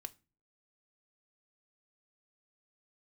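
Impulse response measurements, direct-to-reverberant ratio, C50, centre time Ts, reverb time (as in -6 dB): 11.0 dB, 23.0 dB, 3 ms, 0.30 s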